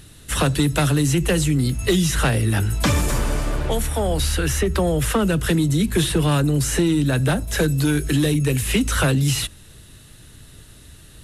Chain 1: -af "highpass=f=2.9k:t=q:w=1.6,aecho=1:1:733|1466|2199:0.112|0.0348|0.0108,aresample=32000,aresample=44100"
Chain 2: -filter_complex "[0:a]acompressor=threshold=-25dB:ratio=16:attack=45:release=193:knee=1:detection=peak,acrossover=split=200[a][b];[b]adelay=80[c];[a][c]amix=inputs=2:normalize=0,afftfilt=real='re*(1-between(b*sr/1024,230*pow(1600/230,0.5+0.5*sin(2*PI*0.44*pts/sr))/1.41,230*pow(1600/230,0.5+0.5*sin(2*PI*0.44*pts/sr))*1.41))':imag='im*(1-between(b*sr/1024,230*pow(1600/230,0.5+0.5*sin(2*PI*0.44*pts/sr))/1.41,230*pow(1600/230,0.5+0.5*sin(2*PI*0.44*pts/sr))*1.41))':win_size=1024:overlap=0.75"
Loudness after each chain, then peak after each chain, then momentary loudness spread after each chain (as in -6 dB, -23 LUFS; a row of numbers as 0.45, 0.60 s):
-25.5, -28.5 LUFS; -8.5, -12.5 dBFS; 18, 18 LU